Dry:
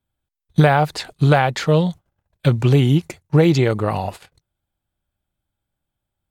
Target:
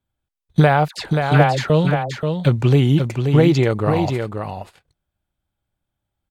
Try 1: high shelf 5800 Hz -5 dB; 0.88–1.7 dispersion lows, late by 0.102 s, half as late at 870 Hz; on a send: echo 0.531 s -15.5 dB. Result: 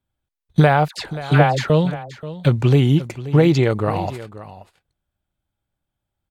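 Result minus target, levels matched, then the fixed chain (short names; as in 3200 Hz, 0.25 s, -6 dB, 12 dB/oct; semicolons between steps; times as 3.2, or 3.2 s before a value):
echo-to-direct -9.5 dB
high shelf 5800 Hz -5 dB; 0.88–1.7 dispersion lows, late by 0.102 s, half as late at 870 Hz; on a send: echo 0.531 s -6 dB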